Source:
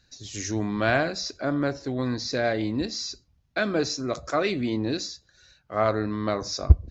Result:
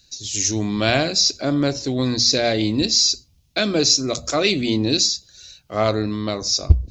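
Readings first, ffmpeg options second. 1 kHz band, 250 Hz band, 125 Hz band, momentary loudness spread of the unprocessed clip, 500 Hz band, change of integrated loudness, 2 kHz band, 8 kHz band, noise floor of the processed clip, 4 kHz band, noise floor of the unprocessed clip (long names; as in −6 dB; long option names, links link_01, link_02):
+2.0 dB, +6.0 dB, +4.0 dB, 10 LU, +4.5 dB, +8.0 dB, +3.0 dB, can't be measured, −57 dBFS, +15.0 dB, −66 dBFS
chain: -af "tiltshelf=frequency=700:gain=4,bandreject=frequency=60:width_type=h:width=6,bandreject=frequency=120:width_type=h:width=6,bandreject=frequency=180:width_type=h:width=6,bandreject=frequency=240:width_type=h:width=6,aexciter=amount=7.5:drive=1:freq=2400,dynaudnorm=framelen=110:gausssize=11:maxgain=4.5dB"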